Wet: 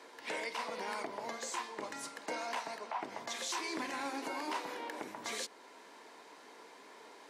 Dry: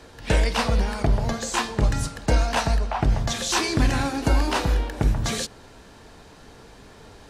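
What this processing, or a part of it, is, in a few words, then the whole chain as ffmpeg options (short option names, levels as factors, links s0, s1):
laptop speaker: -af "highpass=f=290:w=0.5412,highpass=f=290:w=1.3066,equalizer=f=990:t=o:w=0.21:g=9.5,equalizer=f=2100:t=o:w=0.25:g=8,alimiter=limit=0.1:level=0:latency=1:release=391,volume=0.422"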